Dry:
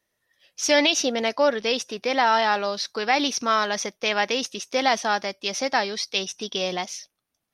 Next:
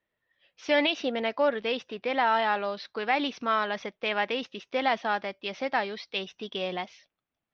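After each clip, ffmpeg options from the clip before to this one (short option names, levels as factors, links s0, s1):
-af "lowpass=f=3400:w=0.5412,lowpass=f=3400:w=1.3066,volume=0.596"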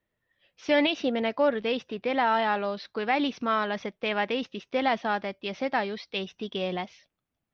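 -af "lowshelf=f=300:g=9.5,volume=0.891"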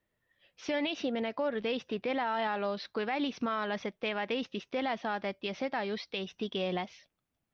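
-af "alimiter=limit=0.0668:level=0:latency=1:release=159"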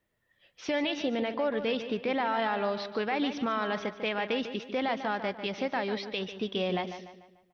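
-filter_complex "[0:a]asplit=2[s0][s1];[s1]adelay=147,lowpass=f=4400:p=1,volume=0.316,asplit=2[s2][s3];[s3]adelay=147,lowpass=f=4400:p=1,volume=0.44,asplit=2[s4][s5];[s5]adelay=147,lowpass=f=4400:p=1,volume=0.44,asplit=2[s6][s7];[s7]adelay=147,lowpass=f=4400:p=1,volume=0.44,asplit=2[s8][s9];[s9]adelay=147,lowpass=f=4400:p=1,volume=0.44[s10];[s0][s2][s4][s6][s8][s10]amix=inputs=6:normalize=0,volume=1.33"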